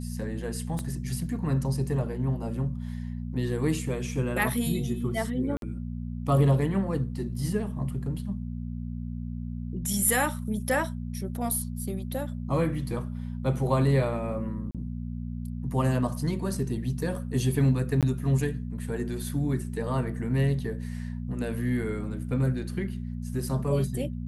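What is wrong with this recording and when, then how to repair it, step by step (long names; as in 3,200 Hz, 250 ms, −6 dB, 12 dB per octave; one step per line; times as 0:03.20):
mains hum 60 Hz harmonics 4 −34 dBFS
0:00.79: click −19 dBFS
0:05.57–0:05.62: drop-out 52 ms
0:14.71–0:14.75: drop-out 37 ms
0:18.01–0:18.03: drop-out 17 ms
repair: click removal
hum removal 60 Hz, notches 4
repair the gap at 0:05.57, 52 ms
repair the gap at 0:14.71, 37 ms
repair the gap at 0:18.01, 17 ms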